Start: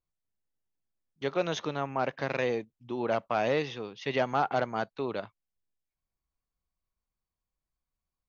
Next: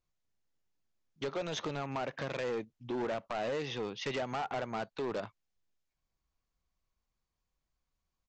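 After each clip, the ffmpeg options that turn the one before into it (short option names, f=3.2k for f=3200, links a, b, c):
-af "acompressor=threshold=-32dB:ratio=6,aresample=16000,asoftclip=type=hard:threshold=-35dB,aresample=44100,volume=4dB"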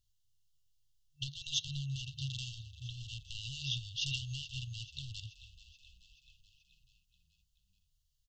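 -filter_complex "[0:a]afftfilt=real='re*(1-between(b*sr/4096,140,2700))':imag='im*(1-between(b*sr/4096,140,2700))':win_size=4096:overlap=0.75,asplit=7[a][b][c][d][e][f][g];[b]adelay=431,afreqshift=-32,volume=-16dB[h];[c]adelay=862,afreqshift=-64,volume=-20dB[i];[d]adelay=1293,afreqshift=-96,volume=-24dB[j];[e]adelay=1724,afreqshift=-128,volume=-28dB[k];[f]adelay=2155,afreqshift=-160,volume=-32.1dB[l];[g]adelay=2586,afreqshift=-192,volume=-36.1dB[m];[a][h][i][j][k][l][m]amix=inputs=7:normalize=0,volume=7dB"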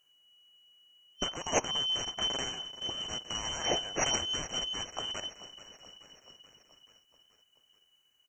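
-af "afftfilt=real='real(if(lt(b,272),68*(eq(floor(b/68),0)*2+eq(floor(b/68),1)*3+eq(floor(b/68),2)*0+eq(floor(b/68),3)*1)+mod(b,68),b),0)':imag='imag(if(lt(b,272),68*(eq(floor(b/68),0)*2+eq(floor(b/68),1)*3+eq(floor(b/68),2)*0+eq(floor(b/68),3)*1)+mod(b,68),b),0)':win_size=2048:overlap=0.75,volume=6.5dB"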